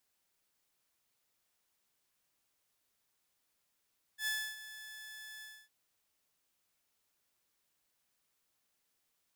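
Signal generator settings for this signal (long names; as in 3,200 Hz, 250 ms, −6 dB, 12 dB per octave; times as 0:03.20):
note with an ADSR envelope saw 1,730 Hz, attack 87 ms, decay 286 ms, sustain −15 dB, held 1.24 s, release 267 ms −29.5 dBFS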